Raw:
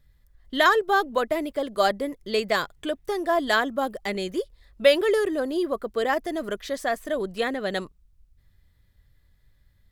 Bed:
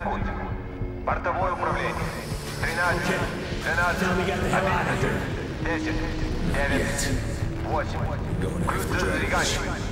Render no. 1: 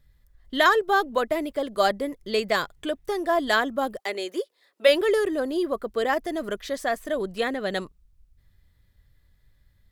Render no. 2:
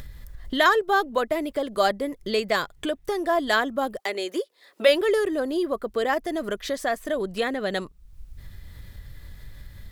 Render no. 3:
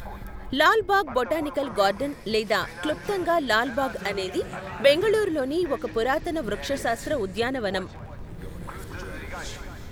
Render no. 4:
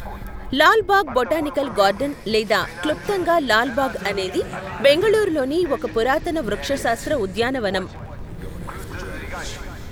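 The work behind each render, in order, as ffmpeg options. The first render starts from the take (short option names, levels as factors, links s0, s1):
-filter_complex "[0:a]asplit=3[s0][s1][s2];[s0]afade=t=out:st=3.97:d=0.02[s3];[s1]highpass=f=320:w=0.5412,highpass=f=320:w=1.3066,afade=t=in:st=3.97:d=0.02,afade=t=out:st=4.87:d=0.02[s4];[s2]afade=t=in:st=4.87:d=0.02[s5];[s3][s4][s5]amix=inputs=3:normalize=0"
-af "acompressor=mode=upward:threshold=0.0708:ratio=2.5"
-filter_complex "[1:a]volume=0.237[s0];[0:a][s0]amix=inputs=2:normalize=0"
-af "volume=1.78,alimiter=limit=0.708:level=0:latency=1"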